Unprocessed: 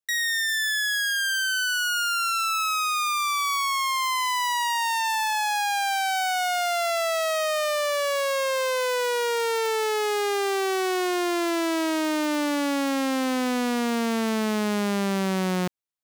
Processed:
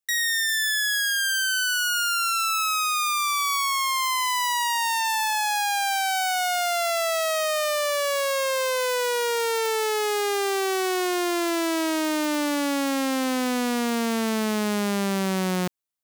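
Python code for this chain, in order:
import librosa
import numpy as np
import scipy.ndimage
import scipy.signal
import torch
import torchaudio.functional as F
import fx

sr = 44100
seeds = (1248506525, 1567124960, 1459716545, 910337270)

y = fx.high_shelf(x, sr, hz=6100.0, db=5.5)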